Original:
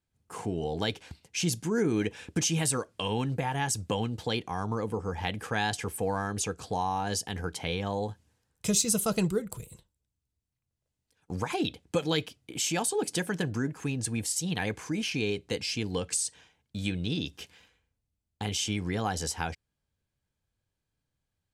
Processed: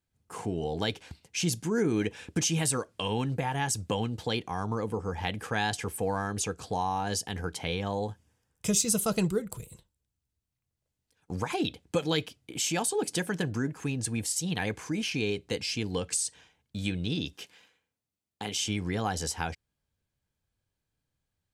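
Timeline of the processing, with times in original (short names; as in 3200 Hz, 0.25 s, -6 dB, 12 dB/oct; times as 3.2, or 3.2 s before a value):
8.1–8.82 notch 4100 Hz, Q 7
17.33–18.57 Bessel high-pass 220 Hz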